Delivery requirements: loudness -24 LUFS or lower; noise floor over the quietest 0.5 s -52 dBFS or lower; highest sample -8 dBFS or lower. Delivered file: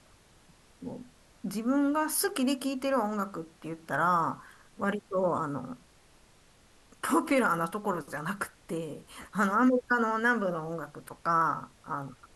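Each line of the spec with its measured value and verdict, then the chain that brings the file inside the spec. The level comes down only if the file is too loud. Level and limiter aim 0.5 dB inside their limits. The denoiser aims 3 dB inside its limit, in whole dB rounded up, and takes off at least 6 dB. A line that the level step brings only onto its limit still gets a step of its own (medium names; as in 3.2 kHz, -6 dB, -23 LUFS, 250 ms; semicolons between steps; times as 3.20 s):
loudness -29.5 LUFS: pass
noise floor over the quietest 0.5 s -60 dBFS: pass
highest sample -15.0 dBFS: pass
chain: none needed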